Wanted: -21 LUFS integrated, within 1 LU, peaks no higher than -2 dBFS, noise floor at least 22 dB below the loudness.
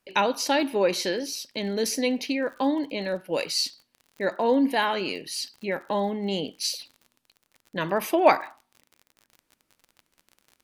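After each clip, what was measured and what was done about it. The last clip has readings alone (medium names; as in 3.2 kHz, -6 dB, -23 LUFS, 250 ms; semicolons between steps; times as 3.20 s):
tick rate 42 per s; loudness -26.0 LUFS; peak level -5.0 dBFS; loudness target -21.0 LUFS
-> de-click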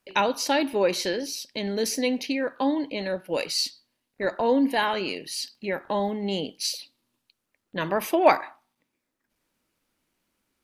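tick rate 0.094 per s; loudness -26.0 LUFS; peak level -5.0 dBFS; loudness target -21.0 LUFS
-> trim +5 dB; peak limiter -2 dBFS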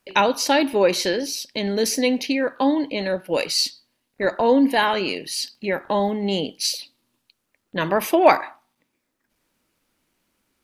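loudness -21.5 LUFS; peak level -2.0 dBFS; noise floor -76 dBFS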